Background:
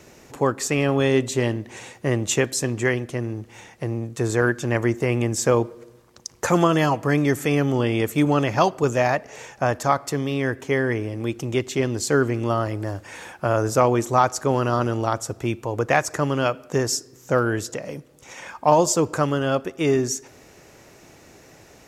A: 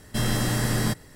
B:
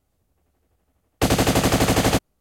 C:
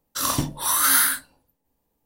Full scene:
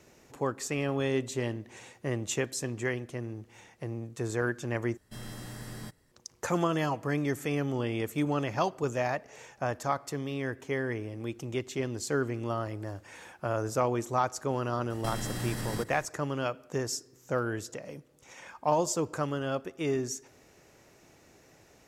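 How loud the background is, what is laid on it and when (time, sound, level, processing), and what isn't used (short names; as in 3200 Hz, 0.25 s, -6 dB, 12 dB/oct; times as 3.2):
background -10 dB
4.97 replace with A -18 dB
14.9 add A -2 dB + compressor, threshold -29 dBFS
not used: B, C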